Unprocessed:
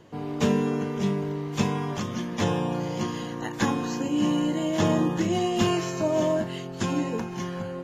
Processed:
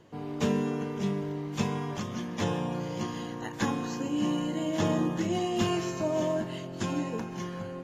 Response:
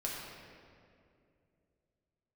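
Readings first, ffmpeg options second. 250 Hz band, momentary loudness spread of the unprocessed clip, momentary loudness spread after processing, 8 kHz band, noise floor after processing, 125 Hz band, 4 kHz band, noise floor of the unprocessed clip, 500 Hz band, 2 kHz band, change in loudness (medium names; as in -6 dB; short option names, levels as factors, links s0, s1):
-4.5 dB, 7 LU, 7 LU, -4.5 dB, -39 dBFS, -4.5 dB, -4.5 dB, -36 dBFS, -4.5 dB, -4.5 dB, -4.5 dB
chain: -filter_complex "[0:a]asplit=2[s0][s1];[1:a]atrim=start_sample=2205,asetrate=26460,aresample=44100,adelay=131[s2];[s1][s2]afir=irnorm=-1:irlink=0,volume=0.0841[s3];[s0][s3]amix=inputs=2:normalize=0,volume=0.596"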